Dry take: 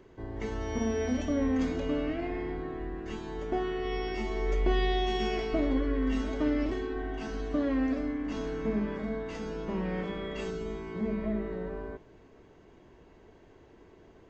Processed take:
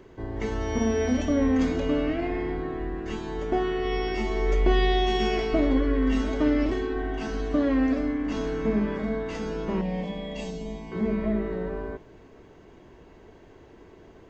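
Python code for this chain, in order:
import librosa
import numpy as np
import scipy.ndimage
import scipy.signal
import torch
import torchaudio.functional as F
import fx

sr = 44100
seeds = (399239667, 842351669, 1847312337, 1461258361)

y = fx.fixed_phaser(x, sr, hz=370.0, stages=6, at=(9.81, 10.92))
y = y * 10.0 ** (5.5 / 20.0)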